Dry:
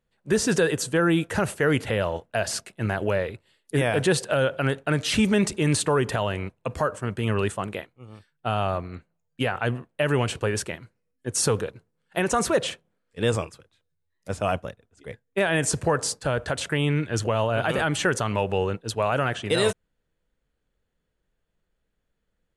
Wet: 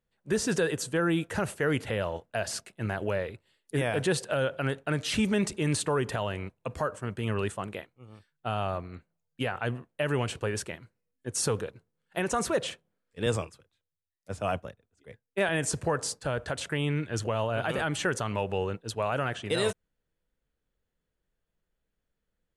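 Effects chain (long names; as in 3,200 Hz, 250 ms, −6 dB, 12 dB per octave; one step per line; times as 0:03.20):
0:13.26–0:15.49: multiband upward and downward expander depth 40%
level −5.5 dB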